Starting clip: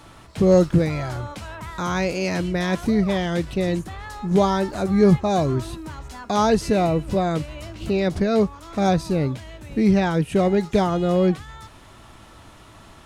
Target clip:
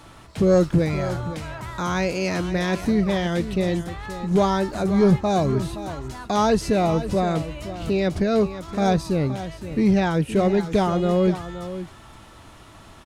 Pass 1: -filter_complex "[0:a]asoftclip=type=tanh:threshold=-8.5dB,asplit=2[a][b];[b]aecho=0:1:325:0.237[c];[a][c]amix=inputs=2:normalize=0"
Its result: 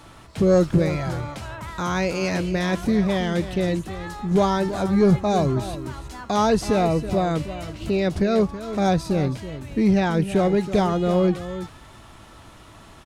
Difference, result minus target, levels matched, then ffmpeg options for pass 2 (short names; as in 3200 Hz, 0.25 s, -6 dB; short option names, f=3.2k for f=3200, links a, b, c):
echo 0.196 s early
-filter_complex "[0:a]asoftclip=type=tanh:threshold=-8.5dB,asplit=2[a][b];[b]aecho=0:1:521:0.237[c];[a][c]amix=inputs=2:normalize=0"